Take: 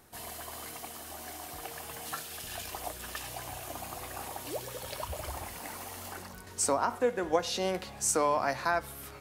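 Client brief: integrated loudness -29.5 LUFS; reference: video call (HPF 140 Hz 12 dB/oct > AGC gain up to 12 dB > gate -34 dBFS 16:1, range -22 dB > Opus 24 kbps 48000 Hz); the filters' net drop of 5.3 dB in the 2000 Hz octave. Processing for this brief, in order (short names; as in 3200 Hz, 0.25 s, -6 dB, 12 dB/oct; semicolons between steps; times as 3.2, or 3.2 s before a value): HPF 140 Hz 12 dB/oct; bell 2000 Hz -7.5 dB; AGC gain up to 12 dB; gate -34 dBFS 16:1, range -22 dB; gain +2.5 dB; Opus 24 kbps 48000 Hz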